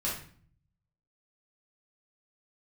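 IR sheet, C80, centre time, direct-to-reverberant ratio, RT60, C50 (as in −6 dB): 9.0 dB, 38 ms, −6.0 dB, 0.50 s, 4.0 dB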